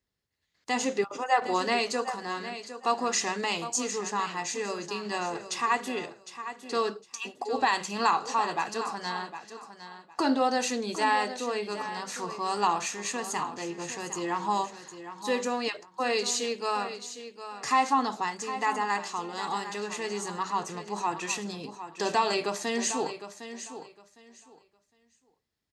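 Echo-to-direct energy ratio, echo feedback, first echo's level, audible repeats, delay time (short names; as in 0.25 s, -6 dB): -11.5 dB, 21%, -11.5 dB, 2, 0.758 s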